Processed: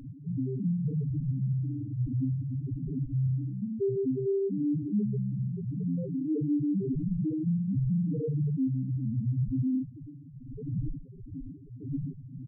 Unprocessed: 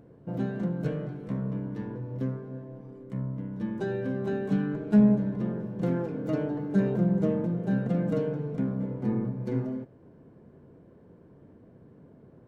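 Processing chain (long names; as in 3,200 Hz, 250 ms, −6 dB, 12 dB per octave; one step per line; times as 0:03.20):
wind on the microphone 280 Hz −33 dBFS
comb filter 7.2 ms, depth 58%
tube saturation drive 30 dB, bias 0.35
spectral peaks only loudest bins 2
level +8.5 dB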